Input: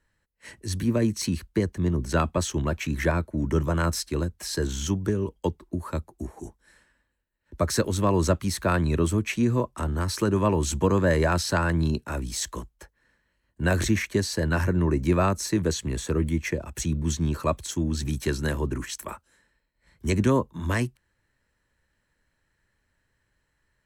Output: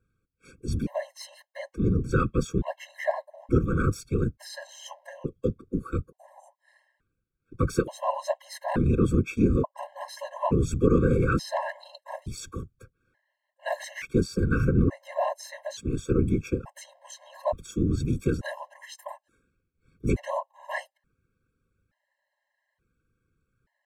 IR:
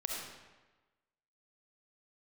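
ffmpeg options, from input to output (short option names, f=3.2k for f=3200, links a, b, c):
-af "highshelf=f=2.4k:g=-10.5,afftfilt=real='hypot(re,im)*cos(2*PI*random(0))':imag='hypot(re,im)*sin(2*PI*random(1))':win_size=512:overlap=0.75,afftfilt=real='re*gt(sin(2*PI*0.57*pts/sr)*(1-2*mod(floor(b*sr/1024/540),2)),0)':imag='im*gt(sin(2*PI*0.57*pts/sr)*(1-2*mod(floor(b*sr/1024/540),2)),0)':win_size=1024:overlap=0.75,volume=7.5dB"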